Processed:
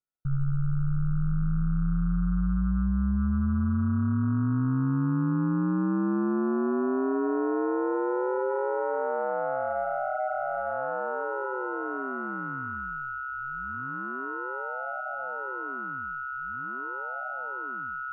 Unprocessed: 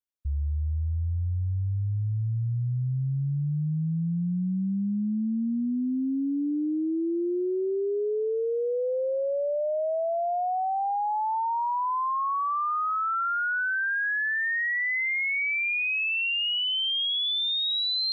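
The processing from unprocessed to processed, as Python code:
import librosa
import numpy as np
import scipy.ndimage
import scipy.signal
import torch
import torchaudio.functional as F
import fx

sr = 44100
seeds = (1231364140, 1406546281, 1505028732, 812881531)

y = np.r_[np.sort(x[:len(x) // 32 * 32].reshape(-1, 32), axis=1).ravel(), x[len(x) // 32 * 32:]]
y = scipy.signal.sosfilt(scipy.signal.bessel(8, 820.0, 'lowpass', norm='mag', fs=sr, output='sos'), y)
y = y * np.sin(2.0 * np.pi * 66.0 * np.arange(len(y)) / sr)
y = F.gain(torch.from_numpy(y), 5.5).numpy()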